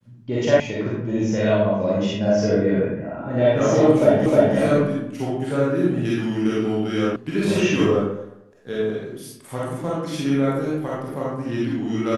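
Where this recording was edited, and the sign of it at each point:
0:00.60: cut off before it has died away
0:04.26: the same again, the last 0.31 s
0:07.16: cut off before it has died away

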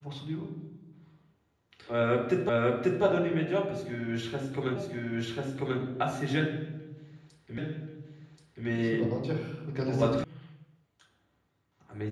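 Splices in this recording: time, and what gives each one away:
0:02.49: the same again, the last 0.54 s
0:04.76: the same again, the last 1.04 s
0:07.58: the same again, the last 1.08 s
0:10.24: cut off before it has died away

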